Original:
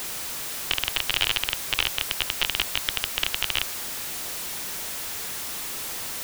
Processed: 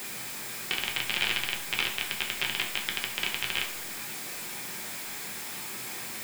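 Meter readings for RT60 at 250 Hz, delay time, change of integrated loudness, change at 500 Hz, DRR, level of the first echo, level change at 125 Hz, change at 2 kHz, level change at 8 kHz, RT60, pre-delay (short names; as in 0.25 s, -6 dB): 0.60 s, none, -4.5 dB, -3.5 dB, 0.0 dB, none, -4.5 dB, -1.0 dB, -5.5 dB, 0.50 s, 3 ms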